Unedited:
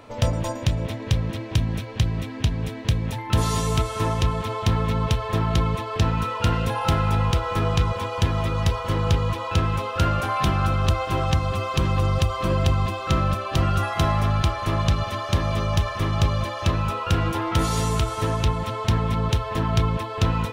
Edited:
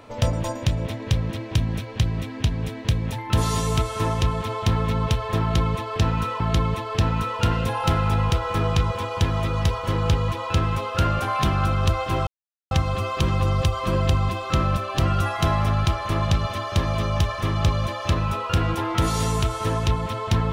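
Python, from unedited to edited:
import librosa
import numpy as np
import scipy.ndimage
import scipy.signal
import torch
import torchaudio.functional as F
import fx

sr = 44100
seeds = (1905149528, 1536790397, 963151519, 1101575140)

y = fx.edit(x, sr, fx.repeat(start_s=5.41, length_s=0.99, count=2),
    fx.insert_silence(at_s=11.28, length_s=0.44), tone=tone)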